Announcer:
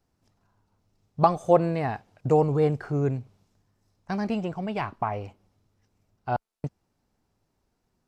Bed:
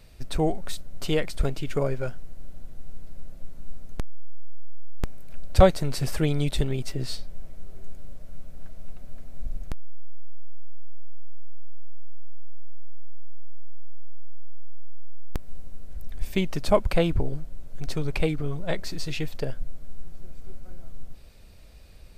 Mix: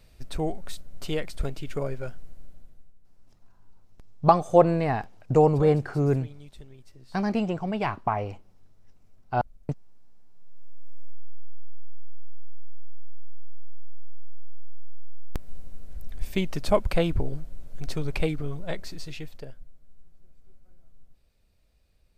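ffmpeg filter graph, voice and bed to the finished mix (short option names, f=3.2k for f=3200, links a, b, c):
-filter_complex "[0:a]adelay=3050,volume=2dB[a];[1:a]volume=16dB,afade=t=out:st=2.28:d=0.66:silence=0.133352,afade=t=in:st=10.33:d=0.77:silence=0.0944061,afade=t=out:st=18.26:d=1.45:silence=0.16788[b];[a][b]amix=inputs=2:normalize=0"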